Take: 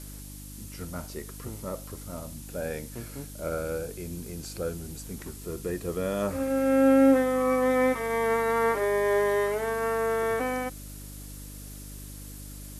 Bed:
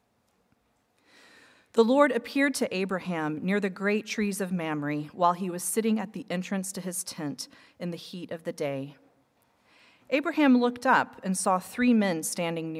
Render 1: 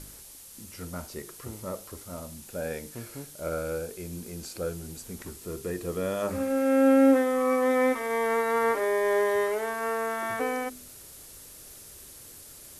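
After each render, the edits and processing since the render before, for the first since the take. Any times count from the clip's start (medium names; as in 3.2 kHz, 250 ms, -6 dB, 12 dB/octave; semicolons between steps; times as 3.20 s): de-hum 50 Hz, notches 9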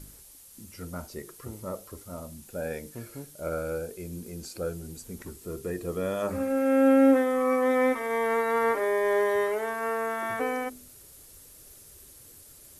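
noise reduction 6 dB, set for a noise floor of -48 dBFS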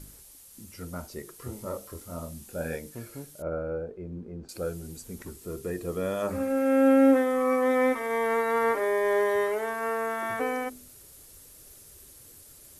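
1.37–2.76 s: doubling 24 ms -3.5 dB; 3.42–4.49 s: low-pass 1.2 kHz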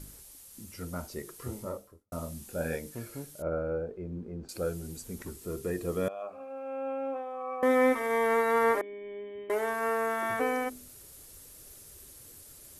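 1.51–2.12 s: studio fade out; 6.08–7.63 s: vowel filter a; 8.81–9.50 s: cascade formant filter i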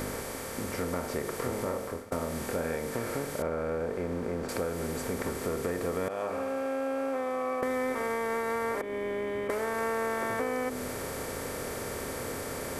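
spectral levelling over time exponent 0.4; compression, threshold -28 dBFS, peak gain reduction 8.5 dB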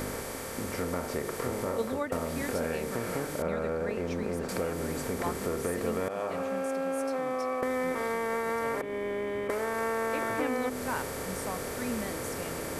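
add bed -13 dB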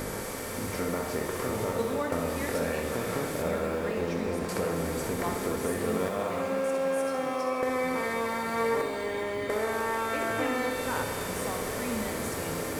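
on a send: flutter echo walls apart 11.2 m, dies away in 0.49 s; on the sum: pitch-shifted reverb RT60 3.2 s, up +12 st, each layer -8 dB, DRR 5.5 dB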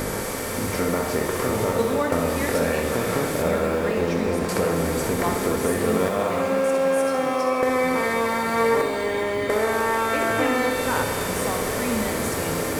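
trim +7.5 dB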